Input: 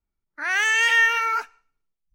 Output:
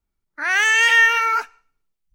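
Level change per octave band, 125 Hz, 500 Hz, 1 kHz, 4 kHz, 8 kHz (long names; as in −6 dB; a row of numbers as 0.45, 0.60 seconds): can't be measured, +4.0 dB, +4.0 dB, +4.0 dB, +4.0 dB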